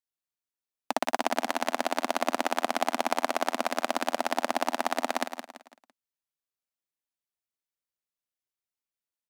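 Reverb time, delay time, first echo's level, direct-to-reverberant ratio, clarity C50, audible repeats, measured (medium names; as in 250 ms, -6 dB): no reverb, 168 ms, -8.5 dB, no reverb, no reverb, 4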